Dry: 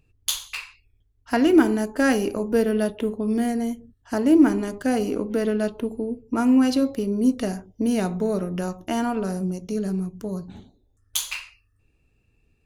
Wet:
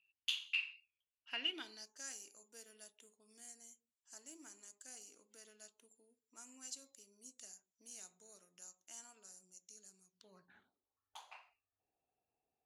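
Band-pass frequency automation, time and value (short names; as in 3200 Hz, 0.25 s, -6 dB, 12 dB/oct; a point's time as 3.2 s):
band-pass, Q 7.5
1.44 s 2800 Hz
2.08 s 7300 Hz
10.06 s 7300 Hz
10.4 s 1900 Hz
11.26 s 740 Hz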